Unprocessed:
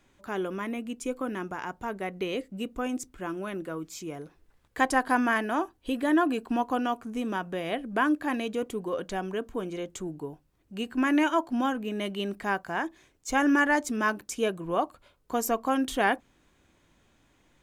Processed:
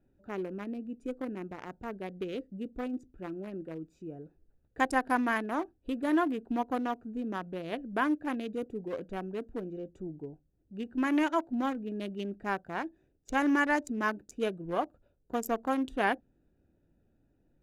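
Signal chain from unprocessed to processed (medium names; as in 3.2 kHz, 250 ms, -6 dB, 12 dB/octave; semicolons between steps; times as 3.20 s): local Wiener filter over 41 samples; trim -3 dB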